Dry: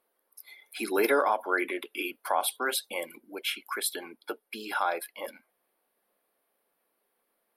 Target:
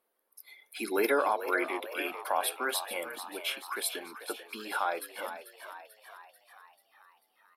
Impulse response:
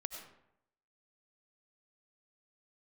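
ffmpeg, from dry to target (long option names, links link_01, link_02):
-filter_complex "[0:a]bandreject=frequency=60:width_type=h:width=6,bandreject=frequency=120:width_type=h:width=6,asplit=7[link_01][link_02][link_03][link_04][link_05][link_06][link_07];[link_02]adelay=440,afreqshift=73,volume=-11dB[link_08];[link_03]adelay=880,afreqshift=146,volume=-15.9dB[link_09];[link_04]adelay=1320,afreqshift=219,volume=-20.8dB[link_10];[link_05]adelay=1760,afreqshift=292,volume=-25.6dB[link_11];[link_06]adelay=2200,afreqshift=365,volume=-30.5dB[link_12];[link_07]adelay=2640,afreqshift=438,volume=-35.4dB[link_13];[link_01][link_08][link_09][link_10][link_11][link_12][link_13]amix=inputs=7:normalize=0,volume=-2.5dB"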